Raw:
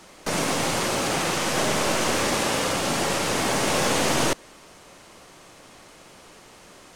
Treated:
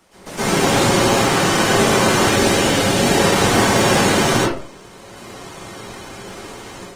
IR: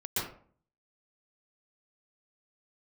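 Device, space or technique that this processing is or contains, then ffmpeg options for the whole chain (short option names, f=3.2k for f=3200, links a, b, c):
speakerphone in a meeting room: -filter_complex "[0:a]asettb=1/sr,asplit=3[a][b][c];[a]atrim=end=2.194[d];[b]atrim=start=2.19:end=3.06,asetpts=PTS-STARTPTS,afade=t=in:d=0.004:c=qsin,afade=t=out:st=0.866:d=0.004:c=qsin,equalizer=f=1.1k:w=2.7:g=-6.5[e];[c]atrim=start=3.056[f];[d][e]acrossfade=d=0.004:c1=hsin:c2=qsin[g];[g][f]acrossfade=d=0.004:c1=qsin:c2=hsin[h];[1:a]atrim=start_sample=2205[i];[h][i]afir=irnorm=-1:irlink=0,dynaudnorm=f=360:g=3:m=9dB,volume=-1dB" -ar 48000 -c:a libopus -b:a 20k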